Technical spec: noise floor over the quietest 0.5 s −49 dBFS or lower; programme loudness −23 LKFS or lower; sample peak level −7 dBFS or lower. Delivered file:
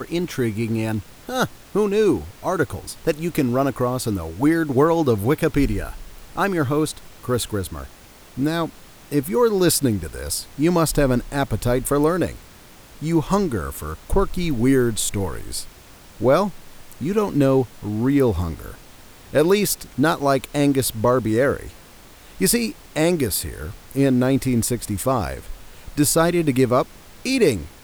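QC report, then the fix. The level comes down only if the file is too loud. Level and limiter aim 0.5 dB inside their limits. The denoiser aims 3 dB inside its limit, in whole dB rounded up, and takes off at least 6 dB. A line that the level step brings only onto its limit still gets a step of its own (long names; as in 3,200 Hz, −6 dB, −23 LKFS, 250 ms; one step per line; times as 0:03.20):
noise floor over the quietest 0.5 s −45 dBFS: out of spec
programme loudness −21.0 LKFS: out of spec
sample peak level −5.5 dBFS: out of spec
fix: broadband denoise 6 dB, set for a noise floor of −45 dBFS
level −2.5 dB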